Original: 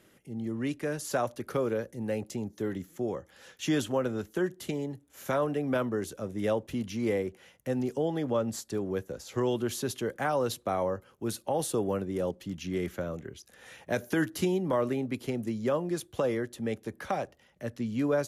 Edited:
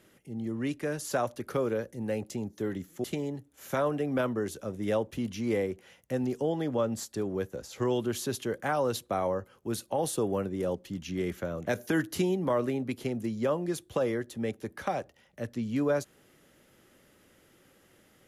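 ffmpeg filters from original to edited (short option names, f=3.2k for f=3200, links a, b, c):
-filter_complex "[0:a]asplit=3[a][b][c];[a]atrim=end=3.042[d];[b]atrim=start=4.598:end=13.232[e];[c]atrim=start=13.898[f];[d][e]acrossfade=d=0.004:c1=hsin:c2=hsin[g];[g][f]acrossfade=d=0.004:c1=hsin:c2=hsin"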